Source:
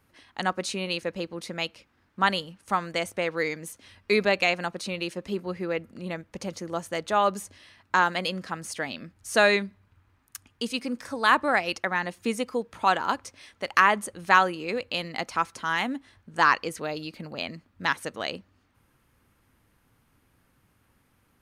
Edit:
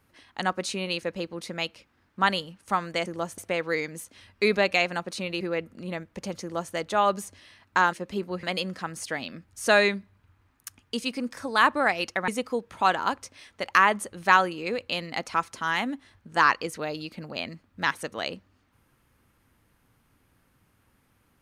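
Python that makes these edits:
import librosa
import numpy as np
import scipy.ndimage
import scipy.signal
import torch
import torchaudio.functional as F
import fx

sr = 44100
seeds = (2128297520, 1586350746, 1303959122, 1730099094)

y = fx.edit(x, sr, fx.move(start_s=5.09, length_s=0.5, to_s=8.11),
    fx.duplicate(start_s=6.6, length_s=0.32, to_s=3.06),
    fx.cut(start_s=11.96, length_s=0.34), tone=tone)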